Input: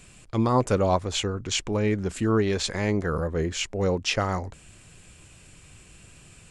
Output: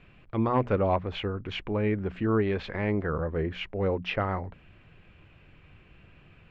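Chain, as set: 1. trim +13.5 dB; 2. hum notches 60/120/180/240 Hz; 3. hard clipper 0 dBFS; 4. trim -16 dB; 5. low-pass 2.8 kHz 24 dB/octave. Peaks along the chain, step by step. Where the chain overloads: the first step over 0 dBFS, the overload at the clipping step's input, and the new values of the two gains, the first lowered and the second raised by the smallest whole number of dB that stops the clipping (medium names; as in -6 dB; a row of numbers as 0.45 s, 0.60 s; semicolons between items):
+3.5 dBFS, +4.5 dBFS, 0.0 dBFS, -16.0 dBFS, -15.5 dBFS; step 1, 4.5 dB; step 1 +8.5 dB, step 4 -11 dB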